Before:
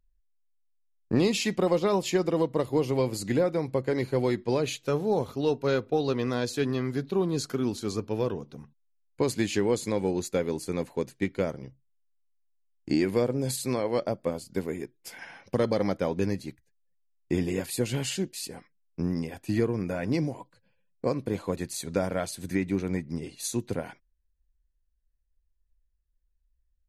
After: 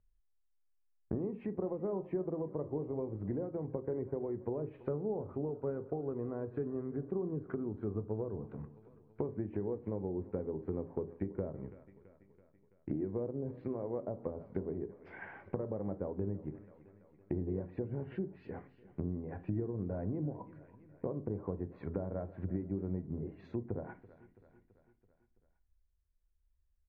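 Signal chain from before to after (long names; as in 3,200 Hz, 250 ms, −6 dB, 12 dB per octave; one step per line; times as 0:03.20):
downward compressor 12 to 1, threshold −31 dBFS, peak gain reduction 13 dB
low-pass filter 1,900 Hz 24 dB per octave
repeating echo 332 ms, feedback 58%, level −20 dB
on a send at −11.5 dB: convolution reverb RT60 0.40 s, pre-delay 3 ms
on the sum: treble cut that deepens with the level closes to 750 Hz, closed at −33 dBFS
level −2 dB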